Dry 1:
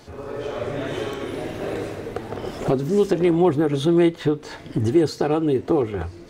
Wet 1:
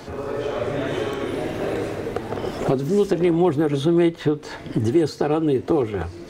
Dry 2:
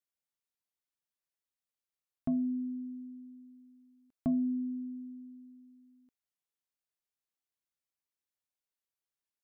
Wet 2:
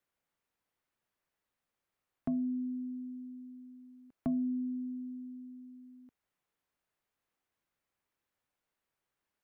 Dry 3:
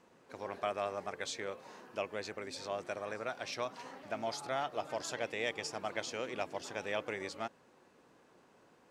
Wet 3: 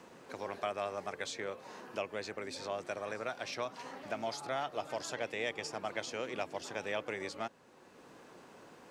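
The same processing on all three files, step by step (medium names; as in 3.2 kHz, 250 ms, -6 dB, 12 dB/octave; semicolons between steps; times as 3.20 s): three bands compressed up and down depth 40%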